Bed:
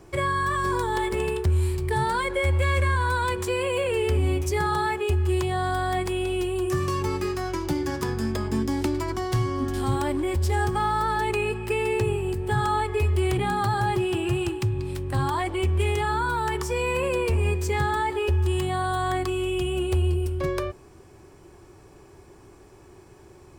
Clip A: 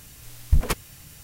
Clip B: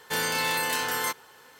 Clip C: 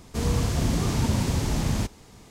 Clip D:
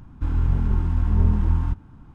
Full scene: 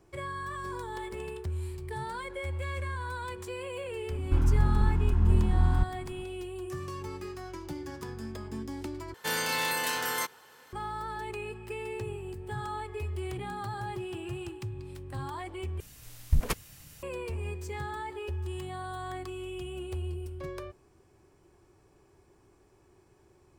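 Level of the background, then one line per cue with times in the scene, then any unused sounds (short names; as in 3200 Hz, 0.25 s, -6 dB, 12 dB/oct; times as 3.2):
bed -12.5 dB
4.1 add D -3.5 dB + vocal rider within 5 dB
9.14 replace with B -3 dB
15.8 replace with A -5.5 dB
not used: C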